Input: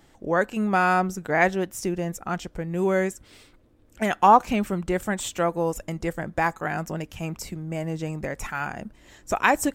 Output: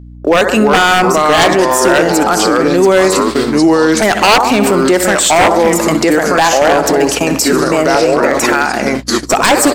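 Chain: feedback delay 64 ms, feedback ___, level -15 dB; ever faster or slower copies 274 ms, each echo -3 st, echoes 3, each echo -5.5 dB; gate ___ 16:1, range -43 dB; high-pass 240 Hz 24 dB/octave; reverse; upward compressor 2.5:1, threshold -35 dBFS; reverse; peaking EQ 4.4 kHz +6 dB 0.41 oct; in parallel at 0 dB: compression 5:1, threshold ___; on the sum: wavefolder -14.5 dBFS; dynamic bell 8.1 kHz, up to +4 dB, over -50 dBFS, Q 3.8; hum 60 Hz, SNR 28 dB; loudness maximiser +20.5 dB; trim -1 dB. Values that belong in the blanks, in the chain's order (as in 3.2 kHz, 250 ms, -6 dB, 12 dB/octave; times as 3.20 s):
54%, -34 dBFS, -30 dBFS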